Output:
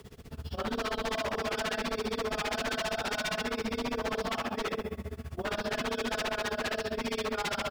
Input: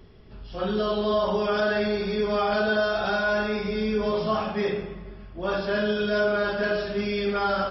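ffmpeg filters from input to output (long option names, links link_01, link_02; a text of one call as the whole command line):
ffmpeg -i in.wav -filter_complex "[0:a]asplit=2[link_01][link_02];[link_02]acompressor=threshold=-37dB:ratio=6,volume=-1dB[link_03];[link_01][link_03]amix=inputs=2:normalize=0,acrusher=bits=8:mix=0:aa=0.000001,afreqshift=29,tremolo=f=15:d=0.95,aeval=exprs='0.0473*(abs(mod(val(0)/0.0473+3,4)-2)-1)':channel_layout=same" out.wav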